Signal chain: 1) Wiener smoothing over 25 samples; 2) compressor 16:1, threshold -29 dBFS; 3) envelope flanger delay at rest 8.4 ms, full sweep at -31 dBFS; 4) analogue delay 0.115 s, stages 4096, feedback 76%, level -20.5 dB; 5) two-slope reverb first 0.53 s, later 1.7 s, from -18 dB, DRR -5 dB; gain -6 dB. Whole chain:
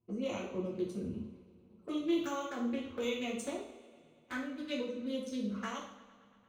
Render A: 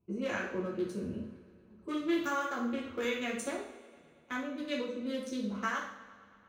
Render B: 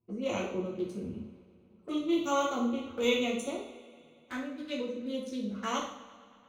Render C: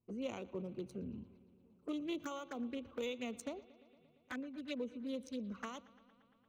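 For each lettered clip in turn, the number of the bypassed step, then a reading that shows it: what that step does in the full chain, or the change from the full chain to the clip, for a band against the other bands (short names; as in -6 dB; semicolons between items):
3, 2 kHz band +6.0 dB; 2, mean gain reduction 2.5 dB; 5, momentary loudness spread change -6 LU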